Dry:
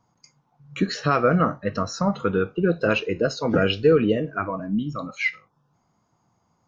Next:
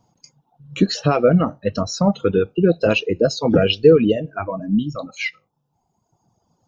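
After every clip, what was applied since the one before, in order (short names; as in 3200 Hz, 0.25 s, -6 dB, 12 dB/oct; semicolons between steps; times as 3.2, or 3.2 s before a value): reverb removal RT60 1.4 s; band shelf 1500 Hz -9 dB 1.3 oct; gain +6.5 dB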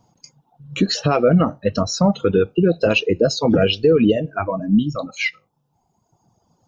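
limiter -9.5 dBFS, peak gain reduction 8 dB; gain +3 dB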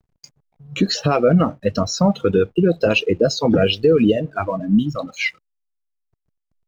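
backlash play -46.5 dBFS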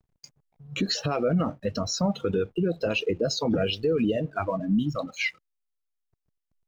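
limiter -12.5 dBFS, peak gain reduction 6 dB; gain -4.5 dB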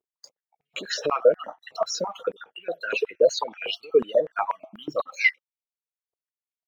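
random spectral dropouts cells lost 34%; spectral noise reduction 15 dB; stepped high-pass 8.2 Hz 410–2300 Hz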